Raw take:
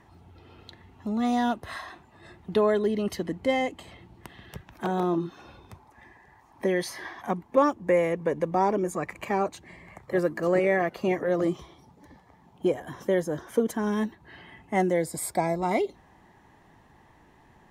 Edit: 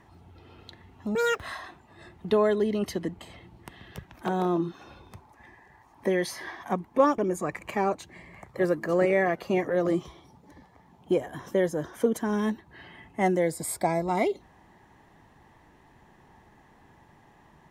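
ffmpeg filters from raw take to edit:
ffmpeg -i in.wav -filter_complex "[0:a]asplit=5[link_01][link_02][link_03][link_04][link_05];[link_01]atrim=end=1.154[link_06];[link_02]atrim=start=1.15:end=1.64,asetpts=PTS-STARTPTS,asetrate=85995,aresample=44100[link_07];[link_03]atrim=start=1.636:end=3.432[link_08];[link_04]atrim=start=3.768:end=7.762[link_09];[link_05]atrim=start=8.718[link_10];[link_06][link_07]acrossfade=duration=0.004:curve1=hsin:curve2=hsin[link_11];[link_11][link_08]acrossfade=duration=0.004:curve1=hsin:curve2=hsin[link_12];[link_12][link_09]acrossfade=duration=0.004:curve1=hsin:curve2=hsin[link_13];[link_13][link_10]acrossfade=duration=0.004:curve1=hsin:curve2=hsin" out.wav

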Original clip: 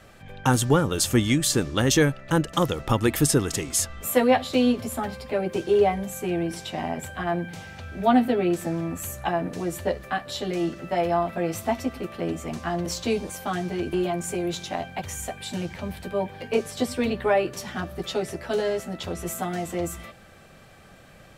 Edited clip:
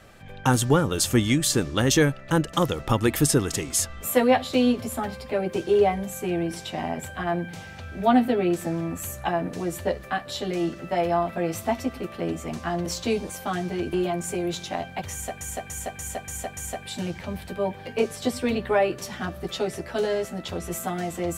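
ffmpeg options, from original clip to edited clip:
ffmpeg -i in.wav -filter_complex "[0:a]asplit=6[link_01][link_02][link_03][link_04][link_05][link_06];[link_01]atrim=end=15.412[link_07];[link_02]atrim=start=15.118:end=15.412[link_08];[link_03]atrim=start=15.118:end=15.412[link_09];[link_04]atrim=start=15.118:end=15.412[link_10];[link_05]atrim=start=15.118:end=15.412[link_11];[link_06]atrim=start=15.118[link_12];[link_07][link_08]acrossfade=duration=0.004:curve1=hsin:curve2=hsin[link_13];[link_13][link_09]acrossfade=duration=0.004:curve1=hsin:curve2=hsin[link_14];[link_14][link_10]acrossfade=duration=0.004:curve1=hsin:curve2=hsin[link_15];[link_15][link_11]acrossfade=duration=0.004:curve1=hsin:curve2=hsin[link_16];[link_16][link_12]acrossfade=duration=0.004:curve1=hsin:curve2=hsin" out.wav

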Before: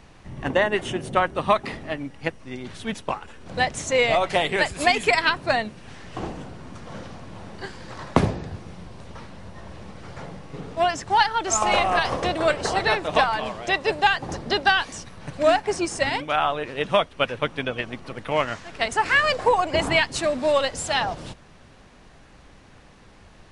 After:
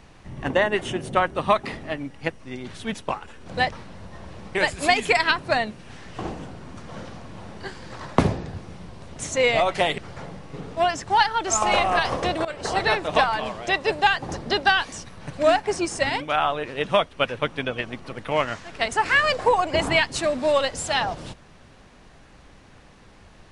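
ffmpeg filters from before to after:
ffmpeg -i in.wav -filter_complex "[0:a]asplit=6[link_01][link_02][link_03][link_04][link_05][link_06];[link_01]atrim=end=3.712[link_07];[link_02]atrim=start=9.138:end=9.982[link_08];[link_03]atrim=start=4.528:end=9.142[link_09];[link_04]atrim=start=3.708:end=4.532[link_10];[link_05]atrim=start=9.978:end=12.45,asetpts=PTS-STARTPTS,afade=type=out:start_time=2.468:duration=0.004:curve=hsin:silence=0.112202[link_11];[link_06]atrim=start=12.45,asetpts=PTS-STARTPTS,afade=type=in:duration=0.31:silence=0.112202[link_12];[link_07][link_08]acrossfade=duration=0.004:curve1=hsin:curve2=hsin[link_13];[link_13][link_09]acrossfade=duration=0.004:curve1=hsin:curve2=hsin[link_14];[link_14][link_10]acrossfade=duration=0.004:curve1=hsin:curve2=hsin[link_15];[link_11][link_12]concat=n=2:v=0:a=1[link_16];[link_15][link_16]acrossfade=duration=0.004:curve1=hsin:curve2=hsin" out.wav

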